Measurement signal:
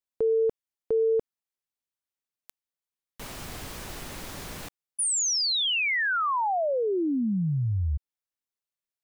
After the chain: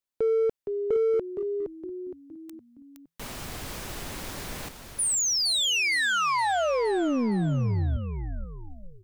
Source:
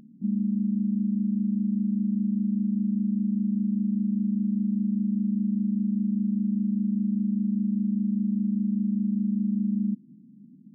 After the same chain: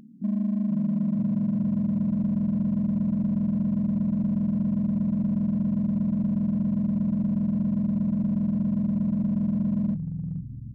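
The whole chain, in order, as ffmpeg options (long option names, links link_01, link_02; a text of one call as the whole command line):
ffmpeg -i in.wav -filter_complex "[0:a]asplit=6[link_01][link_02][link_03][link_04][link_05][link_06];[link_02]adelay=465,afreqshift=-42,volume=-8dB[link_07];[link_03]adelay=930,afreqshift=-84,volume=-14.9dB[link_08];[link_04]adelay=1395,afreqshift=-126,volume=-21.9dB[link_09];[link_05]adelay=1860,afreqshift=-168,volume=-28.8dB[link_10];[link_06]adelay=2325,afreqshift=-210,volume=-35.7dB[link_11];[link_01][link_07][link_08][link_09][link_10][link_11]amix=inputs=6:normalize=0,asplit=2[link_12][link_13];[link_13]asoftclip=type=hard:threshold=-28dB,volume=-6dB[link_14];[link_12][link_14]amix=inputs=2:normalize=0,volume=-2dB" out.wav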